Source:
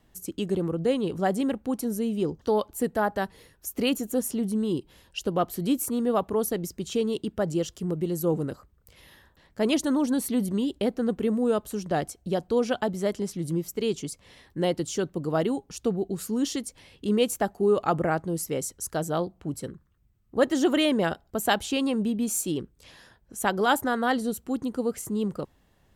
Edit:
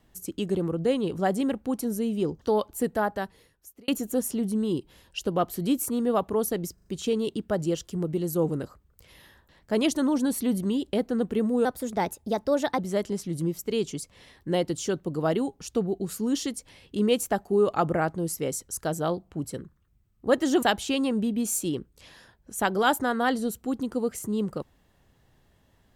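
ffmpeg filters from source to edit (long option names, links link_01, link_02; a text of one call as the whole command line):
ffmpeg -i in.wav -filter_complex "[0:a]asplit=8[link_01][link_02][link_03][link_04][link_05][link_06][link_07][link_08];[link_01]atrim=end=3.88,asetpts=PTS-STARTPTS,afade=type=out:start_time=2.94:duration=0.94[link_09];[link_02]atrim=start=3.88:end=6.782,asetpts=PTS-STARTPTS,afade=type=in:duration=0.004:curve=hsin[link_10];[link_03]atrim=start=6.738:end=6.782[link_11];[link_04]atrim=start=6.738:end=6.782[link_12];[link_05]atrim=start=6.738:end=11.534[link_13];[link_06]atrim=start=11.53:end=12.88,asetpts=PTS-STARTPTS,asetrate=52479,aresample=44100,atrim=end_sample=50029,asetpts=PTS-STARTPTS[link_14];[link_07]atrim=start=12.876:end=20.722[link_15];[link_08]atrim=start=21.448[link_16];[link_09][link_10]concat=n=2:v=0:a=1[link_17];[link_17][link_11]acrossfade=duration=0.004:curve1=hsin:curve2=hsin[link_18];[link_18][link_12]acrossfade=duration=0.004:curve1=hsin:curve2=hsin[link_19];[link_19][link_13]acrossfade=duration=0.004:curve1=hsin:curve2=hsin[link_20];[link_20][link_14]acrossfade=duration=0.004:curve1=hsin:curve2=hsin[link_21];[link_21][link_15]acrossfade=duration=0.004:curve1=hsin:curve2=hsin[link_22];[link_22][link_16]acrossfade=duration=0.004:curve1=hsin:curve2=hsin" out.wav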